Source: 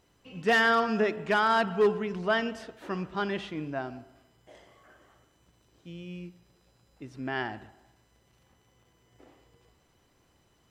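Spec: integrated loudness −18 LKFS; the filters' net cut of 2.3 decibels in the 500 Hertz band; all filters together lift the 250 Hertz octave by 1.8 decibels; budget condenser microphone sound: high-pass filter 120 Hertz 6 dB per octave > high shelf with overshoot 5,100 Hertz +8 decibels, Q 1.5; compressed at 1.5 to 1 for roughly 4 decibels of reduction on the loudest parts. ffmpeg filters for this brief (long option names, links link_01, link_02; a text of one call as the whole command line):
ffmpeg -i in.wav -af "equalizer=frequency=250:width_type=o:gain=4.5,equalizer=frequency=500:width_type=o:gain=-4,acompressor=threshold=-31dB:ratio=1.5,highpass=frequency=120:poles=1,highshelf=frequency=5100:width_type=q:width=1.5:gain=8,volume=14.5dB" out.wav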